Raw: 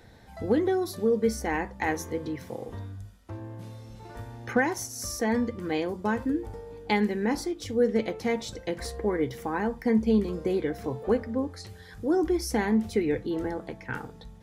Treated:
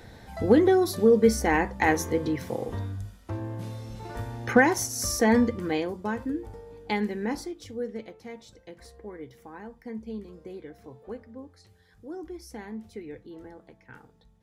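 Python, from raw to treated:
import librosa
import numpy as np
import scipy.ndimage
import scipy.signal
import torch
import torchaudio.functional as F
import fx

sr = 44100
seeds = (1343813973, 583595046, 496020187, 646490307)

y = fx.gain(x, sr, db=fx.line((5.42, 5.5), (6.04, -3.0), (7.32, -3.0), (8.18, -14.0)))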